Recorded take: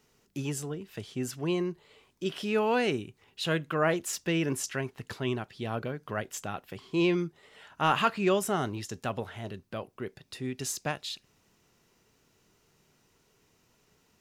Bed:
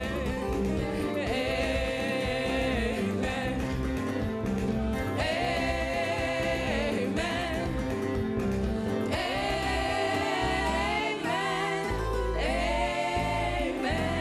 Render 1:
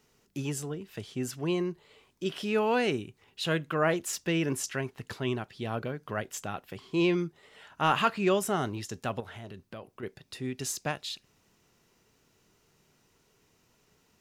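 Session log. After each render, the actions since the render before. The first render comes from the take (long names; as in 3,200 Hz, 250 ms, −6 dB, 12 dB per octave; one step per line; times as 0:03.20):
0:09.20–0:10.03: downward compressor 2.5 to 1, threshold −40 dBFS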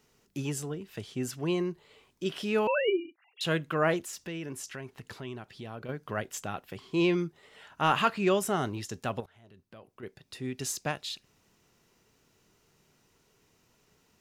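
0:02.67–0:03.41: three sine waves on the formant tracks
0:04.02–0:05.89: downward compressor 2 to 1, threshold −42 dBFS
0:09.26–0:10.61: fade in, from −21 dB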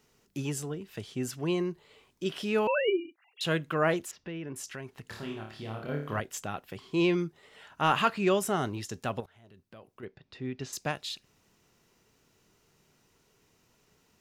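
0:04.11–0:04.56: high-frequency loss of the air 260 metres
0:05.06–0:06.20: flutter between parallel walls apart 4.7 metres, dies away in 0.5 s
0:10.05–0:10.73: high-frequency loss of the air 190 metres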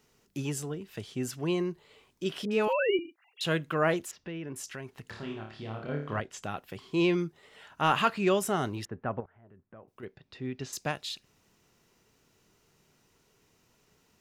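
0:02.45–0:02.99: all-pass dispersion highs, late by 62 ms, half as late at 1,000 Hz
0:05.10–0:06.43: high-frequency loss of the air 76 metres
0:08.85–0:09.88: low-pass filter 1,800 Hz 24 dB per octave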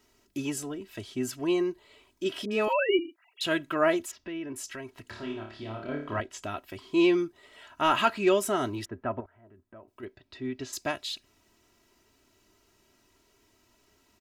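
notch filter 5,700 Hz, Q 30
comb filter 3.1 ms, depth 71%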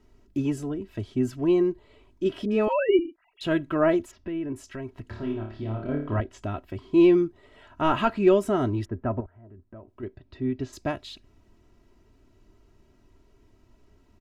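spectral tilt −3.5 dB per octave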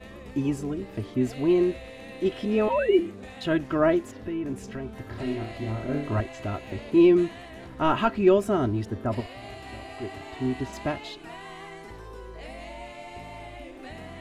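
mix in bed −12.5 dB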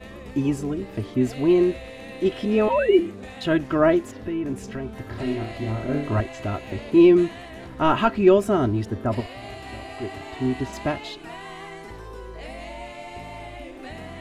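level +3.5 dB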